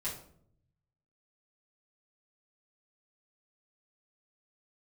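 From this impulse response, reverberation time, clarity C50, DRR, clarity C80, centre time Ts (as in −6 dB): 0.65 s, 6.5 dB, −10.0 dB, 10.5 dB, 31 ms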